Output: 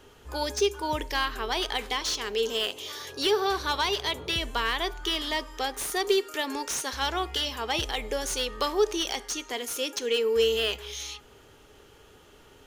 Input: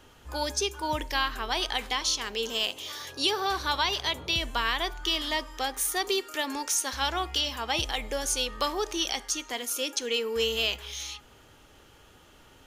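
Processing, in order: peaking EQ 420 Hz +9.5 dB 0.29 oct; slew-rate limiter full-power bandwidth 250 Hz

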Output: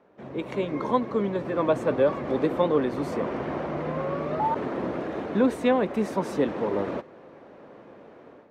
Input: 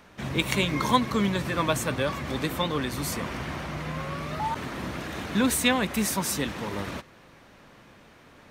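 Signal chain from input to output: level rider gain up to 11 dB; band-pass filter 460 Hz, Q 1.4

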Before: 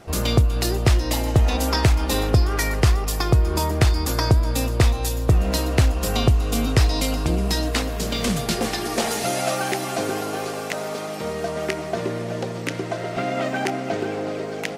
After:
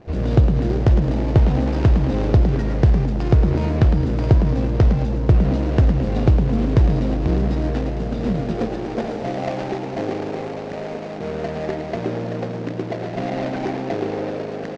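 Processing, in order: median filter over 41 samples; low-pass 6.1 kHz 24 dB/octave; on a send: frequency-shifting echo 108 ms, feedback 48%, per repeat +77 Hz, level -9 dB; on the sum: trim +2.5 dB

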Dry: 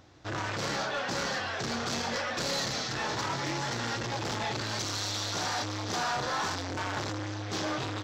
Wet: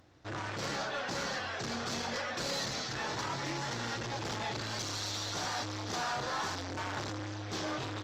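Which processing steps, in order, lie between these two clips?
trim -4 dB; Opus 32 kbps 48 kHz

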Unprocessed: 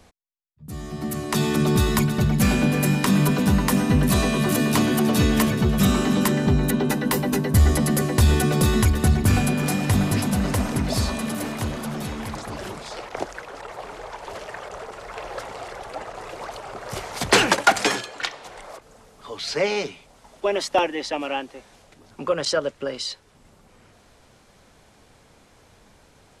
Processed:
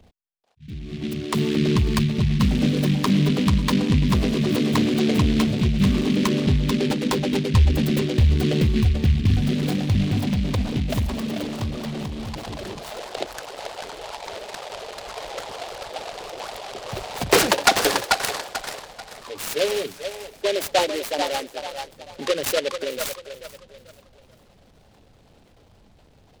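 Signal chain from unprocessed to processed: resonances exaggerated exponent 2; feedback echo behind a band-pass 439 ms, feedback 33%, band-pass 1.2 kHz, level -4 dB; delay time shaken by noise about 2.8 kHz, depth 0.11 ms

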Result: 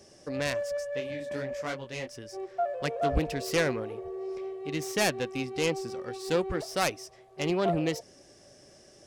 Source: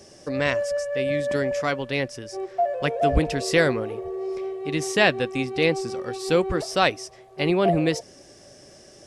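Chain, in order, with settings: self-modulated delay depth 0.19 ms; 0.99–2.07 s: detune thickener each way 45 cents -> 28 cents; trim -6.5 dB

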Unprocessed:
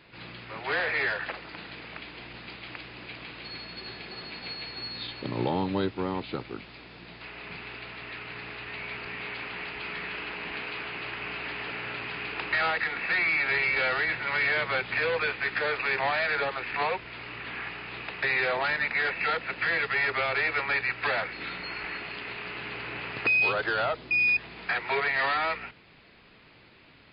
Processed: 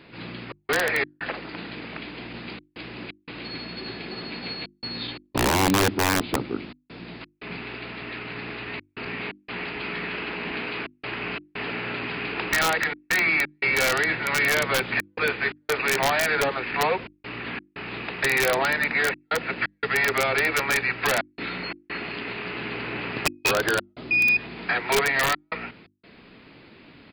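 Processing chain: peaking EQ 250 Hz +9.5 dB 1.5 oct; speakerphone echo 90 ms, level -24 dB; trance gate "xxx.xx.xxxxx" 87 bpm -60 dB; hum notches 50/100/150/200/250/300/350 Hz; integer overflow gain 17 dB; trim +3.5 dB

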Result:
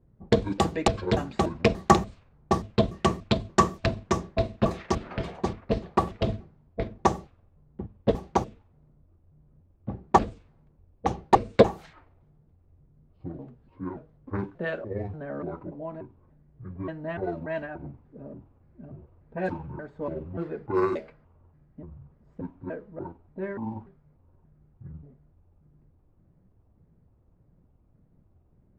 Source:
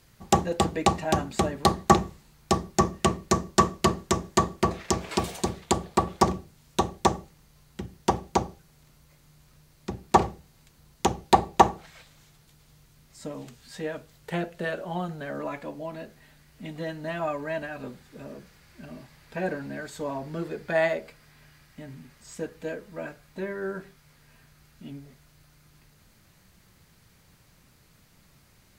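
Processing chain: pitch shift switched off and on -9.5 st, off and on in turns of 291 ms; level-controlled noise filter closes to 430 Hz, open at -20.5 dBFS

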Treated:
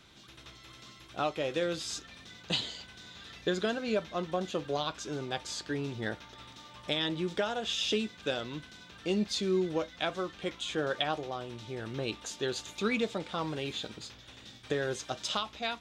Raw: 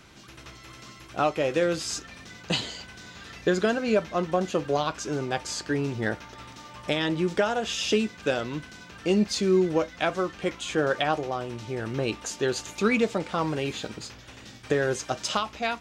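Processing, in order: peaking EQ 3.6 kHz +9.5 dB 0.4 oct; trim -7.5 dB

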